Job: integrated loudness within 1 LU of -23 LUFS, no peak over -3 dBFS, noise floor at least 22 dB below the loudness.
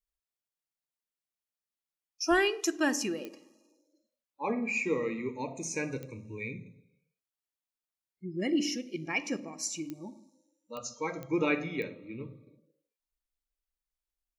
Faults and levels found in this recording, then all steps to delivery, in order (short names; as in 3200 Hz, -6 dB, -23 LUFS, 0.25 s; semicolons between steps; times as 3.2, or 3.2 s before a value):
clicks 6; loudness -32.5 LUFS; peak -13.5 dBFS; loudness target -23.0 LUFS
-> de-click; gain +9.5 dB